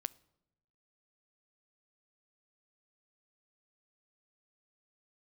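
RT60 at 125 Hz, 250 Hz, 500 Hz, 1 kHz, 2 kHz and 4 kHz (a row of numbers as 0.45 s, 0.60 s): 1.3 s, 1.1 s, 1.0 s, 0.80 s, 0.65 s, 0.60 s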